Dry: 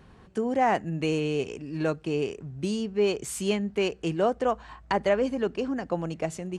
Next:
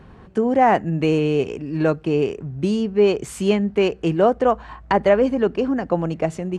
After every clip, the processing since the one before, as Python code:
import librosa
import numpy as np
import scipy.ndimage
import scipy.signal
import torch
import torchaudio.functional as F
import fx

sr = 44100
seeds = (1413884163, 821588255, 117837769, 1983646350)

y = fx.high_shelf(x, sr, hz=3500.0, db=-11.5)
y = y * 10.0 ** (8.5 / 20.0)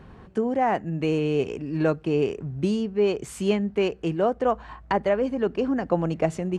y = fx.rider(x, sr, range_db=4, speed_s=0.5)
y = y * 10.0 ** (-5.0 / 20.0)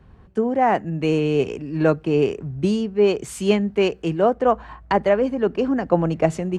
y = fx.band_widen(x, sr, depth_pct=40)
y = y * 10.0 ** (4.5 / 20.0)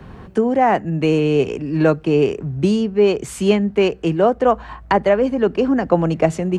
y = fx.band_squash(x, sr, depth_pct=40)
y = y * 10.0 ** (3.0 / 20.0)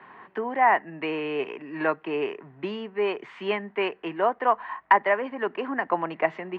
y = fx.cabinet(x, sr, low_hz=450.0, low_slope=12, high_hz=3100.0, hz=(510.0, 1000.0, 1900.0), db=(-7, 9, 10))
y = y * 10.0 ** (-6.0 / 20.0)